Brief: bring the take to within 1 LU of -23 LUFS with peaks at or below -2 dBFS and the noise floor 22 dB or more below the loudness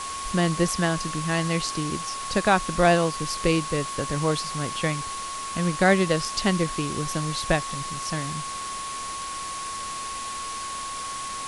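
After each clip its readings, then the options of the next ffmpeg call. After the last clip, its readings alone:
steady tone 1100 Hz; tone level -32 dBFS; noise floor -33 dBFS; noise floor target -48 dBFS; loudness -26.0 LUFS; peak -7.0 dBFS; loudness target -23.0 LUFS
-> -af "bandreject=f=1.1k:w=30"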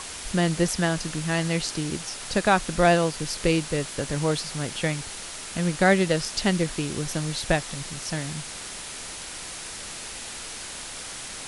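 steady tone none; noise floor -37 dBFS; noise floor target -49 dBFS
-> -af "afftdn=nr=12:nf=-37"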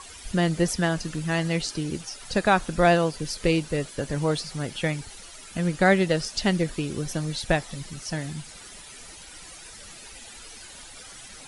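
noise floor -45 dBFS; noise floor target -48 dBFS
-> -af "afftdn=nr=6:nf=-45"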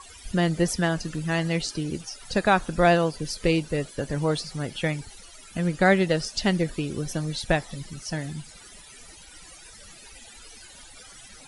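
noise floor -48 dBFS; loudness -26.0 LUFS; peak -7.0 dBFS; loudness target -23.0 LUFS
-> -af "volume=3dB"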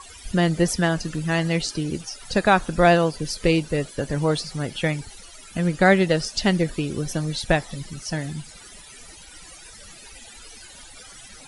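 loudness -23.0 LUFS; peak -4.0 dBFS; noise floor -45 dBFS

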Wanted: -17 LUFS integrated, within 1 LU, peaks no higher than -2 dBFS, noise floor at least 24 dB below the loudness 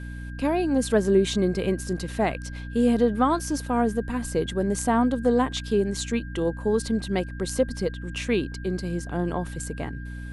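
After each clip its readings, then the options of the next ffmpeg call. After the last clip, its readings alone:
hum 60 Hz; harmonics up to 300 Hz; hum level -32 dBFS; steady tone 1600 Hz; tone level -44 dBFS; loudness -25.5 LUFS; peak -7.0 dBFS; loudness target -17.0 LUFS
-> -af "bandreject=f=60:t=h:w=4,bandreject=f=120:t=h:w=4,bandreject=f=180:t=h:w=4,bandreject=f=240:t=h:w=4,bandreject=f=300:t=h:w=4"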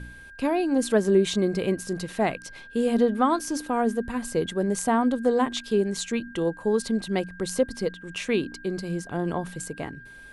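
hum none; steady tone 1600 Hz; tone level -44 dBFS
-> -af "bandreject=f=1.6k:w=30"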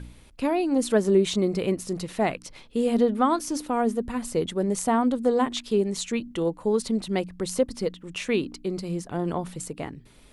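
steady tone none; loudness -26.0 LUFS; peak -7.5 dBFS; loudness target -17.0 LUFS
-> -af "volume=9dB,alimiter=limit=-2dB:level=0:latency=1"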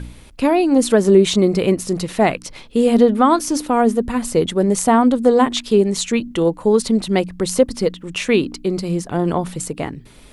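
loudness -17.0 LUFS; peak -2.0 dBFS; noise floor -42 dBFS

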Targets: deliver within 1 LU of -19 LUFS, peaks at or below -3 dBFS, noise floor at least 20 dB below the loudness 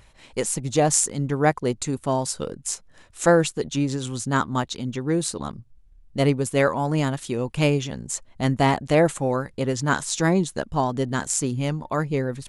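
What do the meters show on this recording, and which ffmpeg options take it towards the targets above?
loudness -23.5 LUFS; peak -3.5 dBFS; loudness target -19.0 LUFS
-> -af "volume=4.5dB,alimiter=limit=-3dB:level=0:latency=1"

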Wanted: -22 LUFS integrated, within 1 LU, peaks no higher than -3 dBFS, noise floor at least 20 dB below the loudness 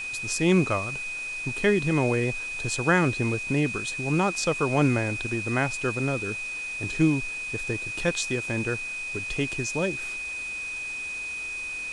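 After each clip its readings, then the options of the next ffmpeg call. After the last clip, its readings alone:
steady tone 2500 Hz; tone level -31 dBFS; noise floor -34 dBFS; noise floor target -47 dBFS; loudness -26.5 LUFS; peak -9.0 dBFS; loudness target -22.0 LUFS
-> -af "bandreject=f=2.5k:w=30"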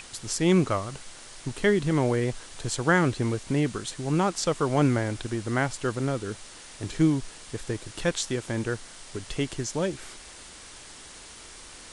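steady tone none; noise floor -46 dBFS; noise floor target -47 dBFS
-> -af "afftdn=nr=6:nf=-46"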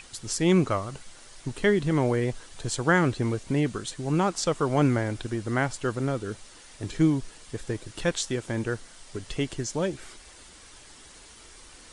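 noise floor -50 dBFS; loudness -27.0 LUFS; peak -9.5 dBFS; loudness target -22.0 LUFS
-> -af "volume=5dB"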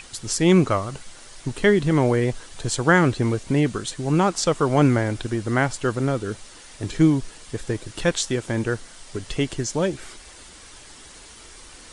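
loudness -22.0 LUFS; peak -4.5 dBFS; noise floor -45 dBFS

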